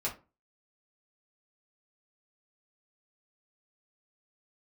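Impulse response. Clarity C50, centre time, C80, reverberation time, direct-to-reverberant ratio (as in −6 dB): 11.5 dB, 17 ms, 19.0 dB, 0.30 s, −6.0 dB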